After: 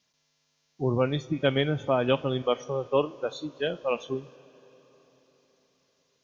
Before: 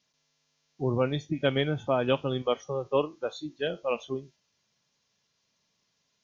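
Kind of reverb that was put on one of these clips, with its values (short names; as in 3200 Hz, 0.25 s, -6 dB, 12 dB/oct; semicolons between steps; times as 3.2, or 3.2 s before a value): plate-style reverb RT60 4.5 s, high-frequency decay 0.9×, DRR 19.5 dB; gain +1.5 dB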